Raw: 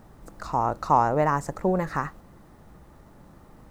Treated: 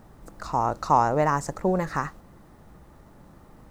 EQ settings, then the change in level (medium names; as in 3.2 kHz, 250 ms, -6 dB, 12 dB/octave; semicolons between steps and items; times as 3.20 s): dynamic bell 5.8 kHz, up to +6 dB, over -48 dBFS, Q 0.89; 0.0 dB